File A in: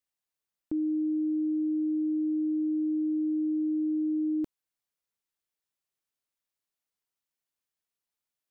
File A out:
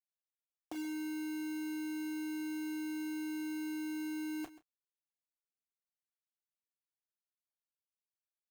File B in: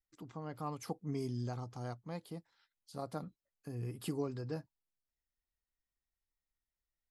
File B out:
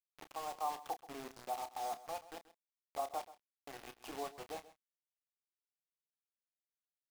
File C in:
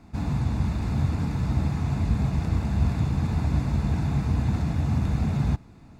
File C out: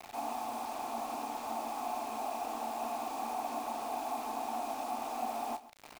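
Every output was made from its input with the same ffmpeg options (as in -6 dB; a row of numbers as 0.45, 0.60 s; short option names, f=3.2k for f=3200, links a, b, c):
-filter_complex "[0:a]afftfilt=real='re*between(b*sr/4096,220,5800)':imag='im*between(b*sr/4096,220,5800)':win_size=4096:overlap=0.75,equalizer=f=890:t=o:w=0.2:g=15,bandreject=f=50:t=h:w=6,bandreject=f=100:t=h:w=6,bandreject=f=150:t=h:w=6,bandreject=f=200:t=h:w=6,bandreject=f=250:t=h:w=6,bandreject=f=300:t=h:w=6,bandreject=f=350:t=h:w=6,bandreject=f=400:t=h:w=6,bandreject=f=450:t=h:w=6,acrossover=split=280[a][b];[b]acompressor=threshold=-51dB:ratio=1.5[c];[a][c]amix=inputs=2:normalize=0,asplit=3[d][e][f];[d]bandpass=f=730:t=q:w=8,volume=0dB[g];[e]bandpass=f=1.09k:t=q:w=8,volume=-6dB[h];[f]bandpass=f=2.44k:t=q:w=8,volume=-9dB[i];[g][h][i]amix=inputs=3:normalize=0,acrusher=bits=9:mix=0:aa=0.000001,asplit=2[j][k];[k]adelay=30,volume=-11dB[l];[j][l]amix=inputs=2:normalize=0,aecho=1:1:132:0.141,volume=13dB"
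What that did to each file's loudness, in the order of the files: -10.5, -1.5, -12.0 LU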